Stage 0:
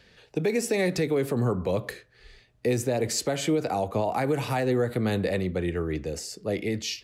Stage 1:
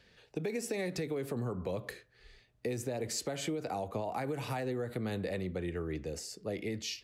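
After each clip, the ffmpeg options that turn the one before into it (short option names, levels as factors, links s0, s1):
-af "acompressor=threshold=0.0562:ratio=6,volume=0.473"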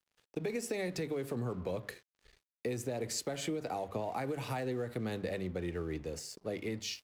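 -af "bandreject=f=50:t=h:w=6,bandreject=f=100:t=h:w=6,bandreject=f=150:t=h:w=6,bandreject=f=200:t=h:w=6,aeval=exprs='sgn(val(0))*max(abs(val(0))-0.00141,0)':c=same"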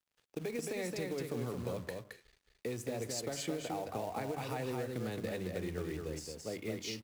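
-filter_complex "[0:a]acrusher=bits=4:mode=log:mix=0:aa=0.000001,asplit=2[s0][s1];[s1]aecho=0:1:220:0.631[s2];[s0][s2]amix=inputs=2:normalize=0,volume=0.708"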